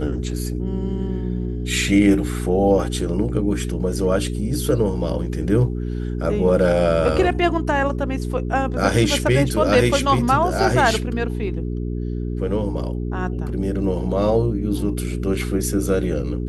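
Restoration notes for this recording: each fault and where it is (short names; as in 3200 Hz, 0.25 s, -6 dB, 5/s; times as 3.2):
hum 60 Hz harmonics 7 -25 dBFS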